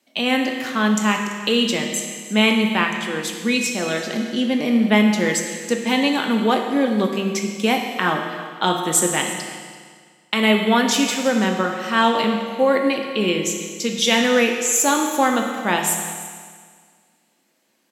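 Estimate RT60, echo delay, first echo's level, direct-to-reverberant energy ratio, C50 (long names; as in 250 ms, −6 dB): 1.8 s, 336 ms, −18.5 dB, 2.0 dB, 4.0 dB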